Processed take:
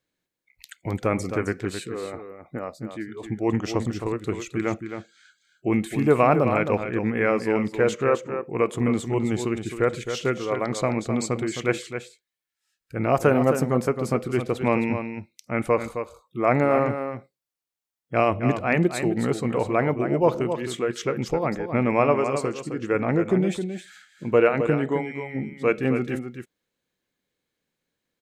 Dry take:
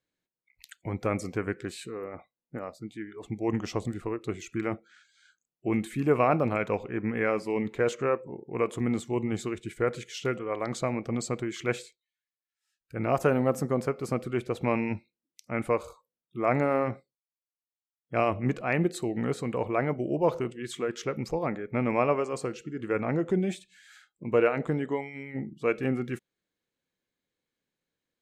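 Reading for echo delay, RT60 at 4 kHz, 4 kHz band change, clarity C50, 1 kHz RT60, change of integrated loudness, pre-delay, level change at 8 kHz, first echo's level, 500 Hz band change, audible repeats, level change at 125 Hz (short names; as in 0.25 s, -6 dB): 0.264 s, none, +5.5 dB, none, none, +5.5 dB, none, +5.5 dB, -8.5 dB, +5.5 dB, 1, +5.5 dB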